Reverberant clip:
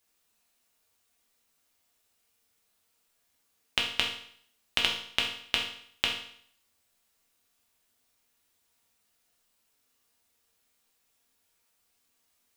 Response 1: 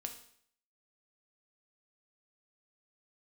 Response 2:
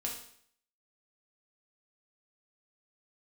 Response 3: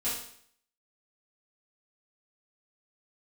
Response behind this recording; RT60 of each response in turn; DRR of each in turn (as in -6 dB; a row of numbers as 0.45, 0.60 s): 2; 0.60, 0.60, 0.60 s; 4.5, -1.5, -11.0 dB